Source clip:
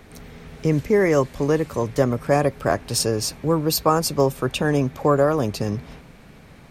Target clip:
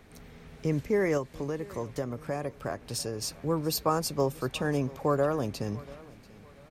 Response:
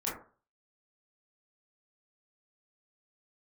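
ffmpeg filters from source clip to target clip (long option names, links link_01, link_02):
-filter_complex "[0:a]asettb=1/sr,asplit=3[link_01][link_02][link_03];[link_01]atrim=end=1.174[link_04];[link_02]atrim=start=1.17:end=3.22,asetpts=PTS-STARTPTS,afade=type=in:duration=0.004:curve=qsin,afade=type=out:start_time=2.046:duration=0.004:curve=qsin,acompressor=threshold=-23dB:ratio=2.5[link_05];[link_03]atrim=start=3.216[link_06];[link_04][link_05]acrossfade=duration=0.004:curve1=hsin:curve2=qsin[link_07];[link_07][link_06]acrossfade=duration=0.004:curve1=qsin:curve2=hsin,aecho=1:1:689|1378|2067:0.0891|0.0303|0.0103,volume=-8.5dB"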